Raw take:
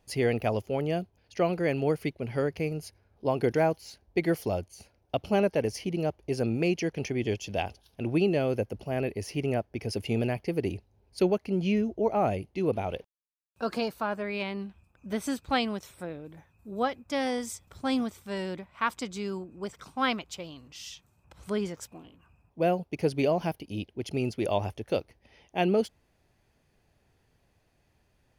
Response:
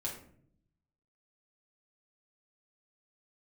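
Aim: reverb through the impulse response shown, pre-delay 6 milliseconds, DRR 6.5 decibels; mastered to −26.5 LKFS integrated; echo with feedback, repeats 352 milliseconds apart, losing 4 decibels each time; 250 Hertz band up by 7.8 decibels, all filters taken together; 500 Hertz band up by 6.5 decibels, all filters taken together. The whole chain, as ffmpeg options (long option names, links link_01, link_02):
-filter_complex "[0:a]equalizer=frequency=250:width_type=o:gain=8.5,equalizer=frequency=500:width_type=o:gain=5.5,aecho=1:1:352|704|1056|1408|1760|2112|2464|2816|3168:0.631|0.398|0.25|0.158|0.0994|0.0626|0.0394|0.0249|0.0157,asplit=2[link_01][link_02];[1:a]atrim=start_sample=2205,adelay=6[link_03];[link_02][link_03]afir=irnorm=-1:irlink=0,volume=-7.5dB[link_04];[link_01][link_04]amix=inputs=2:normalize=0,volume=-5dB"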